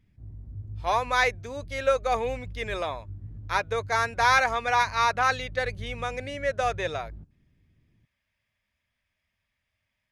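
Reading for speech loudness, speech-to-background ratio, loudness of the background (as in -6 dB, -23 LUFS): -26.5 LUFS, 16.0 dB, -42.5 LUFS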